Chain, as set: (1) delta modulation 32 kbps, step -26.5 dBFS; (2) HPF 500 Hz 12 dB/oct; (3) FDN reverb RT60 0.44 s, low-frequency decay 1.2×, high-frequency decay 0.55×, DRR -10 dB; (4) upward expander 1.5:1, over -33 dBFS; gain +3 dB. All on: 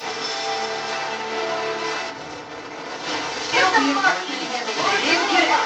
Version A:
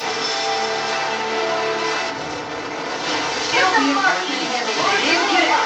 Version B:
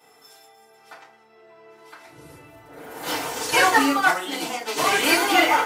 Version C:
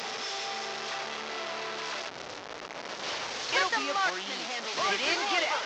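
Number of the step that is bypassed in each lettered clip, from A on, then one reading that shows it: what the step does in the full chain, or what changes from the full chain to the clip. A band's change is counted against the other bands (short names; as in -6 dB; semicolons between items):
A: 4, crest factor change -2.5 dB; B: 1, 8 kHz band +3.0 dB; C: 3, momentary loudness spread change -3 LU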